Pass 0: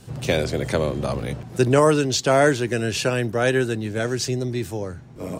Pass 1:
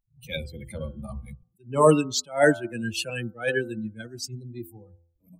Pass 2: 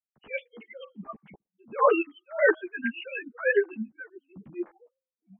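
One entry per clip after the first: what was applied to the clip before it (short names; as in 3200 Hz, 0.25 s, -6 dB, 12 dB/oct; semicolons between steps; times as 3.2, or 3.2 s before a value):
per-bin expansion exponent 3; de-hum 84.65 Hz, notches 18; attack slew limiter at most 200 dB/s; gain +4 dB
sine-wave speech; reverb removal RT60 0.83 s; ensemble effect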